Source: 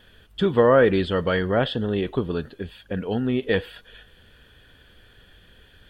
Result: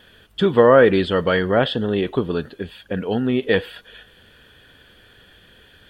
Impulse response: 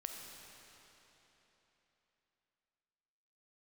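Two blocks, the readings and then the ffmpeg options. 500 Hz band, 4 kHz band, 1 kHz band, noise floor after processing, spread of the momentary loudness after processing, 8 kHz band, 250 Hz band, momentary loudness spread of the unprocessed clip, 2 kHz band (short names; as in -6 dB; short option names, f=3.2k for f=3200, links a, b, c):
+4.0 dB, +4.5 dB, +4.5 dB, -52 dBFS, 18 LU, n/a, +3.5 dB, 17 LU, +4.5 dB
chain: -af "lowshelf=f=75:g=-12,volume=4.5dB"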